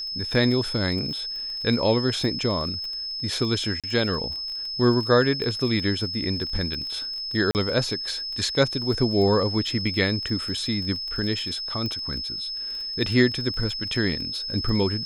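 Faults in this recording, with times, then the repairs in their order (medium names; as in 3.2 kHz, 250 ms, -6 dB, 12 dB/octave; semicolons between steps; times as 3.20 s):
crackle 24 per s -31 dBFS
whine 5.2 kHz -29 dBFS
3.80–3.84 s: dropout 37 ms
7.51–7.55 s: dropout 39 ms
11.86 s: pop -18 dBFS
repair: de-click; band-stop 5.2 kHz, Q 30; interpolate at 3.80 s, 37 ms; interpolate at 7.51 s, 39 ms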